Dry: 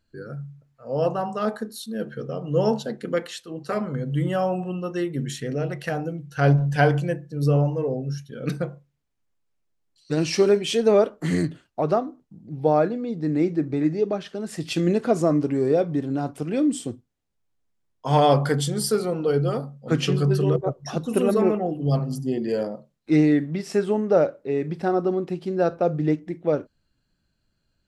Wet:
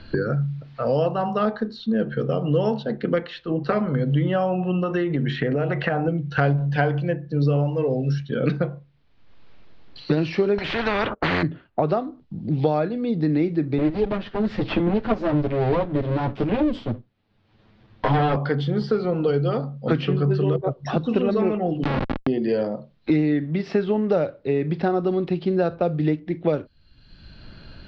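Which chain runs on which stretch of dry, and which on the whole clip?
0:04.83–0:06.08: parametric band 1,200 Hz +5.5 dB 2.2 octaves + downward compressor 3 to 1, threshold −29 dBFS
0:10.58–0:11.43: one scale factor per block 7 bits + noise gate −42 dBFS, range −33 dB + every bin compressed towards the loudest bin 4 to 1
0:13.78–0:18.36: lower of the sound and its delayed copy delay 9.3 ms + bass and treble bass +8 dB, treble −4 dB
0:21.83–0:22.27: comparator with hysteresis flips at −22 dBFS + comb filter 3.6 ms, depth 43%
whole clip: Butterworth low-pass 4,400 Hz 36 dB per octave; multiband upward and downward compressor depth 100%

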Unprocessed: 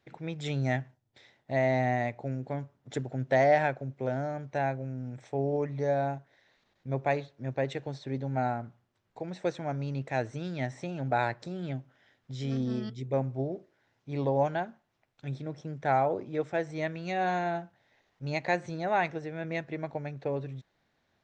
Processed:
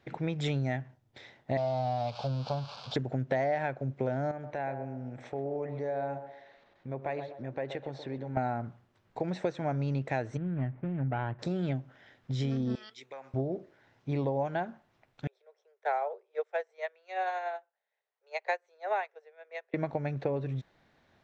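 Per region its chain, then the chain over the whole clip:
0:01.57–0:02.96: spike at every zero crossing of −23.5 dBFS + Chebyshev low-pass filter 4,700 Hz, order 4 + phaser with its sweep stopped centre 800 Hz, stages 4
0:04.31–0:08.37: bass and treble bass −6 dB, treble −7 dB + downward compressor 2 to 1, threshold −48 dBFS + feedback echo with a band-pass in the loop 126 ms, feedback 43%, band-pass 620 Hz, level −8 dB
0:10.37–0:11.39: running median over 25 samples + low-pass filter 2,000 Hz 24 dB per octave + parametric band 590 Hz −12 dB 2.2 octaves
0:12.75–0:13.34: high-pass filter 1,200 Hz + downward compressor, threshold −48 dBFS
0:15.27–0:19.74: Butterworth high-pass 400 Hz 96 dB per octave + expander for the loud parts 2.5 to 1, over −41 dBFS
whole clip: high-shelf EQ 5,400 Hz −9.5 dB; downward compressor 6 to 1, threshold −36 dBFS; level +8 dB

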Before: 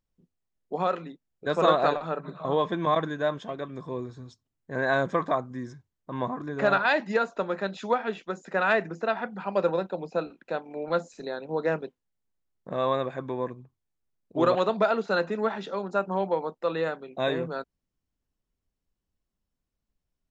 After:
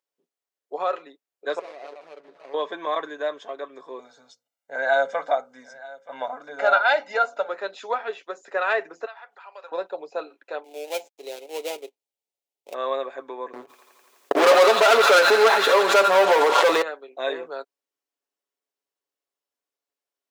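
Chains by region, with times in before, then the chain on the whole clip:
0:01.59–0:02.54: running median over 41 samples + low-pass filter 6,100 Hz + downward compressor 3 to 1, threshold −41 dBFS
0:03.99–0:07.49: mains-hum notches 60/120/180/240/300/360/420/480/540 Hz + comb filter 1.4 ms, depth 91% + single-tap delay 926 ms −20 dB
0:09.05–0:09.72: high-pass filter 910 Hz + downward compressor 2 to 1, threshold −47 dBFS
0:10.64–0:12.74: gap after every zero crossing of 0.24 ms + high-pass filter 260 Hz + flat-topped bell 1,400 Hz −14.5 dB 1 octave
0:13.53–0:16.82: delay with a high-pass on its return 85 ms, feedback 81%, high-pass 1,700 Hz, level −7 dB + leveller curve on the samples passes 5 + background raised ahead of every attack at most 39 dB per second
whole clip: high-pass filter 390 Hz 24 dB per octave; comb filter 7.1 ms, depth 41%

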